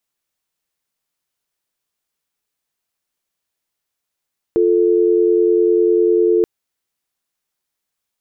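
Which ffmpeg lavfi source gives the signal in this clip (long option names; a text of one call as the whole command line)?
ffmpeg -f lavfi -i "aevalsrc='0.211*(sin(2*PI*350*t)+sin(2*PI*440*t))':duration=1.88:sample_rate=44100" out.wav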